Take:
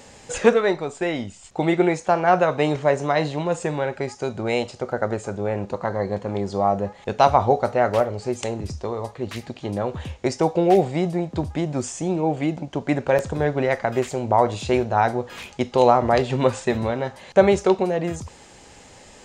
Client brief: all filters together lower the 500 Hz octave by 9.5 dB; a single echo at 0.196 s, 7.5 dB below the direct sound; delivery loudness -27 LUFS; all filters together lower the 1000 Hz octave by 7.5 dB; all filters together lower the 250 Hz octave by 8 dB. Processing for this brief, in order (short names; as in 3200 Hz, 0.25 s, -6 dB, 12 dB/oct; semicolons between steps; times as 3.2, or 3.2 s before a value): bell 250 Hz -8.5 dB; bell 500 Hz -8 dB; bell 1000 Hz -6 dB; echo 0.196 s -7.5 dB; gain +2 dB